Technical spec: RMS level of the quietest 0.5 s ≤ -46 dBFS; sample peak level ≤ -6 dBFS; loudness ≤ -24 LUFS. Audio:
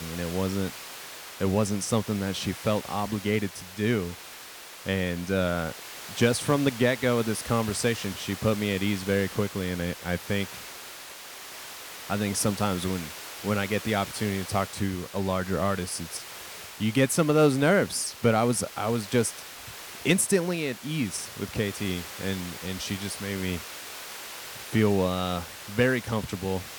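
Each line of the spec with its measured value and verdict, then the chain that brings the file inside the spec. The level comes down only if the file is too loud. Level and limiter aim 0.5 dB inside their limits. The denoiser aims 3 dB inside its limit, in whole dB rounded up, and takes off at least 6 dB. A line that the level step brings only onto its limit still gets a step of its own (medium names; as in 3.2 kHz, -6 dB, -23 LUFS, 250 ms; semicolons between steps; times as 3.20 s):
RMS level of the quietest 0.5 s -44 dBFS: fail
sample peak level -9.0 dBFS: pass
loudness -27.5 LUFS: pass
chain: noise reduction 6 dB, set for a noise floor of -44 dBFS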